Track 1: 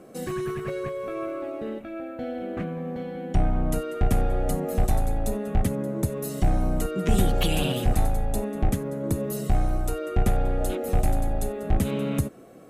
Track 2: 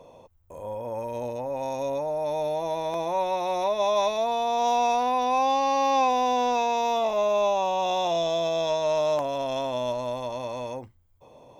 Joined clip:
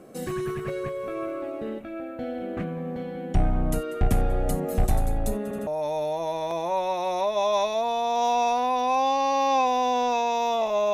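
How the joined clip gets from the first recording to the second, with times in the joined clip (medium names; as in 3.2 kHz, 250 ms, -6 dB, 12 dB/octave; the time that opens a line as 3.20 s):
track 1
5.43 s: stutter in place 0.08 s, 3 plays
5.67 s: go over to track 2 from 2.10 s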